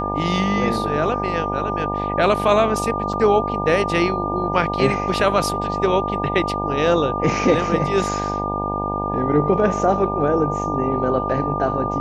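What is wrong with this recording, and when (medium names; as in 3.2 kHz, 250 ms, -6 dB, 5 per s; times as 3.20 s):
buzz 50 Hz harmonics 19 -26 dBFS
whine 1.2 kHz -24 dBFS
3.13 s: dropout 4.2 ms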